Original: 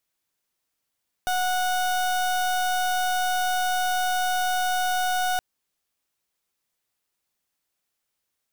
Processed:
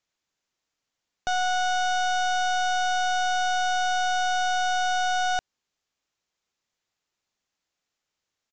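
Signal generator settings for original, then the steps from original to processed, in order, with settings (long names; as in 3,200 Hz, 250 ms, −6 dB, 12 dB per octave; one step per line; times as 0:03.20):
pulse wave 734 Hz, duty 31% −24 dBFS 4.12 s
downsampling to 16,000 Hz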